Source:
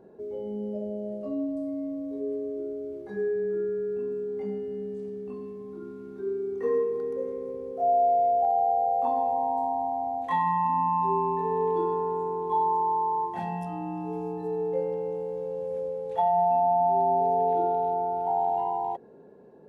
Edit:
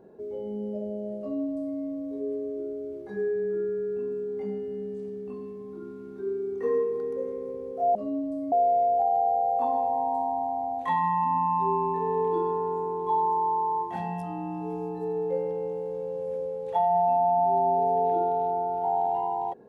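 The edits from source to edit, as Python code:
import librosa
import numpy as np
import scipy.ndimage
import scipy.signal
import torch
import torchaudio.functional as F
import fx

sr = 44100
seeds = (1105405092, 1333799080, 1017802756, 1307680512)

y = fx.edit(x, sr, fx.duplicate(start_s=1.2, length_s=0.57, to_s=7.95), tone=tone)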